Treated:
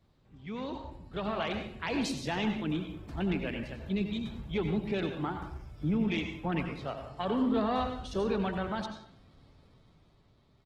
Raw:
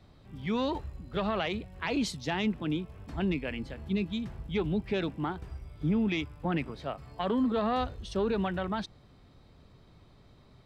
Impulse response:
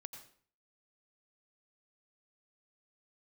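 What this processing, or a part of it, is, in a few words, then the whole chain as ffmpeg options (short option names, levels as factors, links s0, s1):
speakerphone in a meeting room: -filter_complex "[1:a]atrim=start_sample=2205[s0];[0:a][s0]afir=irnorm=-1:irlink=0,asplit=2[s1][s2];[s2]adelay=180,highpass=300,lowpass=3400,asoftclip=type=hard:threshold=0.0282,volume=0.126[s3];[s1][s3]amix=inputs=2:normalize=0,dynaudnorm=f=110:g=21:m=2.37,volume=0.668" -ar 48000 -c:a libopus -b:a 16k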